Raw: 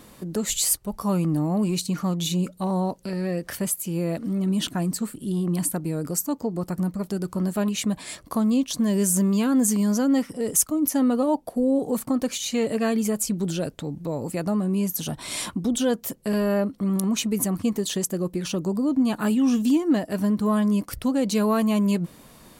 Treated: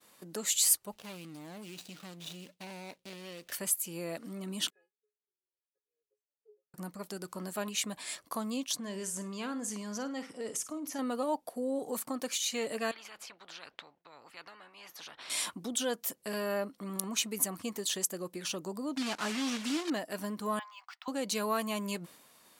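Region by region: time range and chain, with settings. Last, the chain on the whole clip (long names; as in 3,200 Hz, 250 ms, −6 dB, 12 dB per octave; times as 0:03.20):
0:00.92–0:03.52: running median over 41 samples + high shelf with overshoot 2,100 Hz +8.5 dB, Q 1.5 + downward compressor 4 to 1, threshold −30 dBFS
0:04.70–0:06.74: formant filter e + parametric band 400 Hz +10 dB 1.2 octaves + tuned comb filter 420 Hz, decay 0.36 s, mix 100%
0:08.77–0:10.99: downward compressor 3 to 1, threshold −22 dBFS + high-frequency loss of the air 62 metres + flutter between parallel walls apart 9 metres, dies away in 0.25 s
0:12.91–0:15.30: upward compression, threshold −31 dBFS + high-frequency loss of the air 330 metres + every bin compressed towards the loudest bin 4 to 1
0:18.97–0:19.91: one scale factor per block 3 bits + low-pass filter 7,000 Hz
0:20.59–0:21.08: Chebyshev high-pass filter 750 Hz, order 6 + high-frequency loss of the air 190 metres + linearly interpolated sample-rate reduction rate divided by 2×
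whole clip: high-pass filter 980 Hz 6 dB per octave; downward expander −48 dBFS; level −3 dB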